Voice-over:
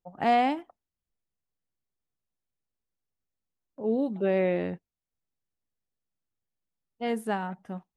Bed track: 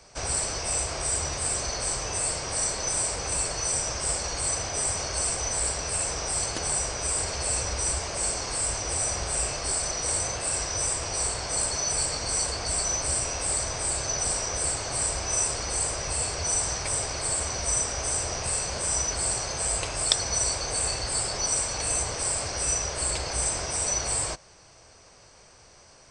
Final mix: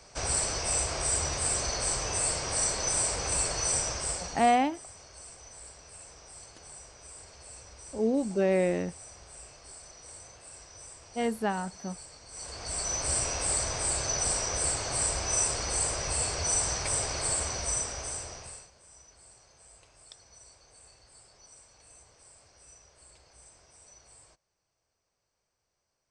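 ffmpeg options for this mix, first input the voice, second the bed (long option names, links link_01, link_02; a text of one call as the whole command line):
ffmpeg -i stem1.wav -i stem2.wav -filter_complex "[0:a]adelay=4150,volume=0dB[link_01];[1:a]volume=18dB,afade=type=out:start_time=3.75:duration=0.84:silence=0.105925,afade=type=in:start_time=12.31:duration=0.88:silence=0.112202,afade=type=out:start_time=17.28:duration=1.43:silence=0.0446684[link_02];[link_01][link_02]amix=inputs=2:normalize=0" out.wav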